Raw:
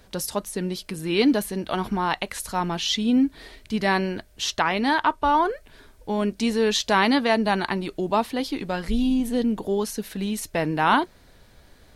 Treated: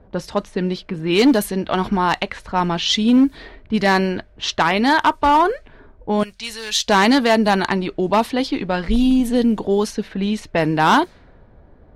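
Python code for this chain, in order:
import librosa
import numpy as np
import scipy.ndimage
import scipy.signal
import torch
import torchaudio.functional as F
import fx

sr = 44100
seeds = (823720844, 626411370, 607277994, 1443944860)

y = fx.clip_asym(x, sr, top_db=-16.0, bottom_db=-13.5)
y = fx.env_lowpass(y, sr, base_hz=790.0, full_db=-19.0)
y = fx.tone_stack(y, sr, knobs='10-0-10', at=(6.23, 6.88))
y = y * 10.0 ** (6.5 / 20.0)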